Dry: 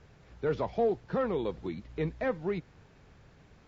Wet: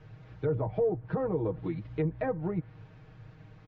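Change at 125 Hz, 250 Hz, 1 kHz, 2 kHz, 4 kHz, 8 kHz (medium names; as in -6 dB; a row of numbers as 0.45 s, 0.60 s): +6.5 dB, +1.5 dB, -3.0 dB, -4.5 dB, under -10 dB, no reading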